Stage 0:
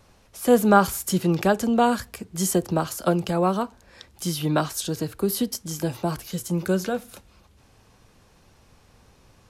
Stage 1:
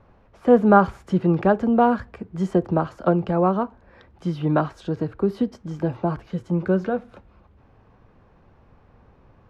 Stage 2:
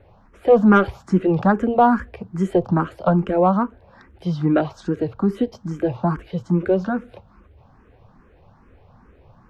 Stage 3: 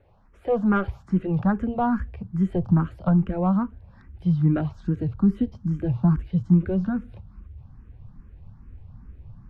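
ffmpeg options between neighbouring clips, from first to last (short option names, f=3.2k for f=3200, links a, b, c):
-af "lowpass=1.5k,volume=2.5dB"
-filter_complex "[0:a]acontrast=47,asplit=2[a][b];[b]afreqshift=2.4[c];[a][c]amix=inputs=2:normalize=1"
-filter_complex "[0:a]asubboost=boost=10.5:cutoff=160,acrossover=split=3500[a][b];[b]acompressor=threshold=-58dB:ratio=4:attack=1:release=60[c];[a][c]amix=inputs=2:normalize=0,volume=-8.5dB"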